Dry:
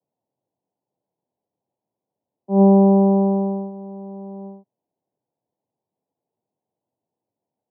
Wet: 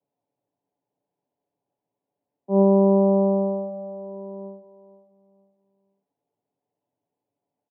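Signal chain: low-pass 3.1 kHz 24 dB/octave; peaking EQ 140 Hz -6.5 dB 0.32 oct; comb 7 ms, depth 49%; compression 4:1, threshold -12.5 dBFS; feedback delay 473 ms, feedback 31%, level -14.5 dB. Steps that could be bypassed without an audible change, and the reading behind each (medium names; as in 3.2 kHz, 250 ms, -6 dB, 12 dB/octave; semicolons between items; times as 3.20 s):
low-pass 3.1 kHz: input has nothing above 1 kHz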